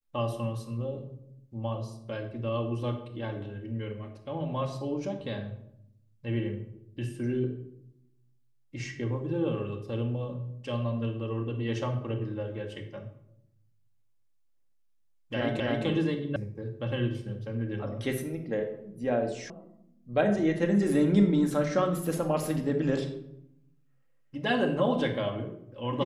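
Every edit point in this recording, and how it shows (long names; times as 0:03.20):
0:15.60: the same again, the last 0.26 s
0:16.36: cut off before it has died away
0:19.50: cut off before it has died away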